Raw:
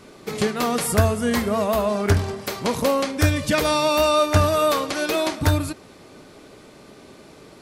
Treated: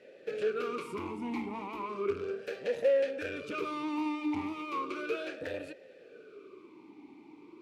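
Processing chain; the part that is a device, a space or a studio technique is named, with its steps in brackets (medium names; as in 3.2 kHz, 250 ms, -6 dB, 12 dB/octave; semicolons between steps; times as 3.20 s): talk box (valve stage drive 25 dB, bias 0.65; talking filter e-u 0.35 Hz); trim +6 dB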